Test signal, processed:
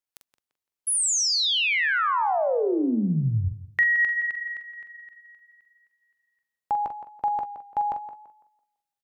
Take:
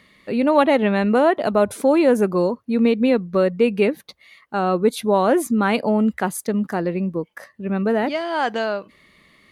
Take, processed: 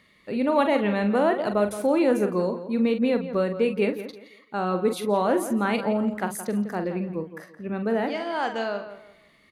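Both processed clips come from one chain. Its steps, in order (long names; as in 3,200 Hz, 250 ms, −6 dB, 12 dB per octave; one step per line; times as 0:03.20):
double-tracking delay 44 ms −8.5 dB
on a send: tape delay 169 ms, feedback 31%, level −11 dB, low-pass 3,200 Hz
on the sum: level −6 dB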